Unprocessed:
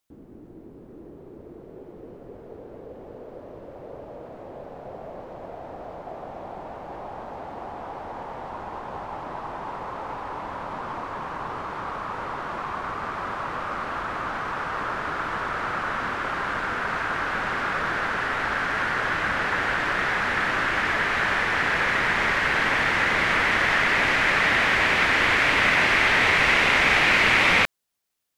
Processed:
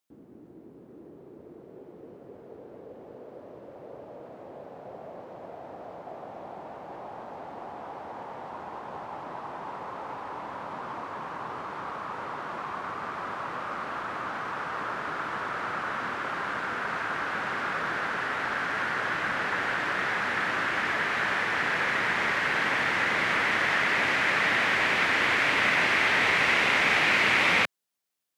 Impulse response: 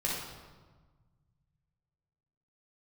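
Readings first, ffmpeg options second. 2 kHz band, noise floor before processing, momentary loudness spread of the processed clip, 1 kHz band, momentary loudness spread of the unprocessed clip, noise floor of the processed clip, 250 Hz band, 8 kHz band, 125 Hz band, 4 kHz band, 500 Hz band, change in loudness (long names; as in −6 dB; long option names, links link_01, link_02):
−4.0 dB, −45 dBFS, 22 LU, −4.0 dB, 22 LU, −50 dBFS, −4.5 dB, −4.0 dB, −7.0 dB, −4.0 dB, −4.0 dB, −4.0 dB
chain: -af "highpass=120,volume=-4dB"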